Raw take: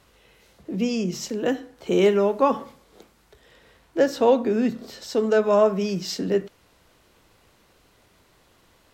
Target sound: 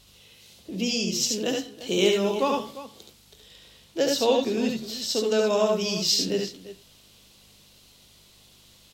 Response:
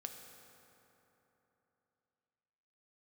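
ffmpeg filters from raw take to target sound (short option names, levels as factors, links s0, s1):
-af "highshelf=f=2400:t=q:w=1.5:g=11,aeval=exprs='val(0)+0.00178*(sin(2*PI*50*n/s)+sin(2*PI*2*50*n/s)/2+sin(2*PI*3*50*n/s)/3+sin(2*PI*4*50*n/s)/4+sin(2*PI*5*50*n/s)/5)':c=same,aecho=1:1:71|85|347:0.631|0.422|0.178,volume=0.562"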